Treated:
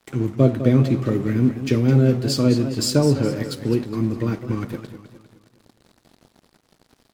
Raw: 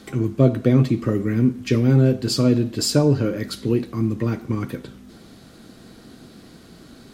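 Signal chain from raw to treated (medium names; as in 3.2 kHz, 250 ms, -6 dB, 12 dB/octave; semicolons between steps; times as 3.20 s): crossover distortion -40.5 dBFS; modulated delay 207 ms, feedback 46%, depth 133 cents, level -11 dB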